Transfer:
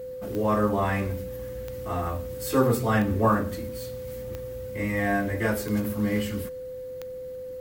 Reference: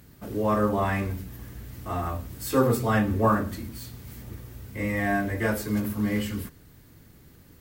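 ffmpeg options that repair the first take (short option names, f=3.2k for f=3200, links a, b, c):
-af "adeclick=t=4,bandreject=f=510:w=30"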